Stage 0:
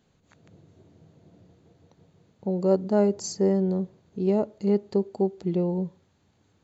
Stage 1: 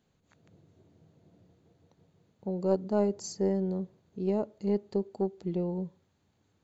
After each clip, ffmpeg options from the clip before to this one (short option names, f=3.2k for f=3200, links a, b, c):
-af "aeval=exprs='0.335*(cos(1*acos(clip(val(0)/0.335,-1,1)))-cos(1*PI/2))+0.0168*(cos(2*acos(clip(val(0)/0.335,-1,1)))-cos(2*PI/2))+0.0168*(cos(3*acos(clip(val(0)/0.335,-1,1)))-cos(3*PI/2))':c=same,volume=-5dB"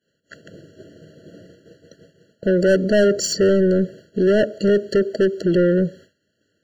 -filter_complex "[0:a]asplit=2[a][b];[b]highpass=f=720:p=1,volume=30dB,asoftclip=type=tanh:threshold=-13.5dB[c];[a][c]amix=inputs=2:normalize=0,lowpass=f=5.1k:p=1,volume=-6dB,agate=range=-33dB:threshold=-43dB:ratio=3:detection=peak,afftfilt=real='re*eq(mod(floor(b*sr/1024/670),2),0)':imag='im*eq(mod(floor(b*sr/1024/670),2),0)':win_size=1024:overlap=0.75,volume=6dB"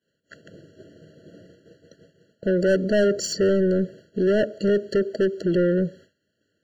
-af "highshelf=f=7.4k:g=-4,volume=-4dB"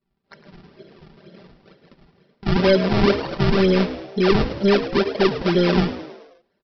-filter_complex "[0:a]aresample=11025,acrusher=samples=12:mix=1:aa=0.000001:lfo=1:lforange=19.2:lforate=2.1,aresample=44100,aecho=1:1:5.1:0.67,asplit=6[a][b][c][d][e][f];[b]adelay=106,afreqshift=67,volume=-13dB[g];[c]adelay=212,afreqshift=134,volume=-18.5dB[h];[d]adelay=318,afreqshift=201,volume=-24dB[i];[e]adelay=424,afreqshift=268,volume=-29.5dB[j];[f]adelay=530,afreqshift=335,volume=-35.1dB[k];[a][g][h][i][j][k]amix=inputs=6:normalize=0"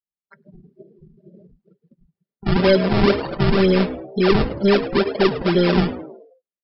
-af "afftdn=nr=35:nf=-38,volume=1dB"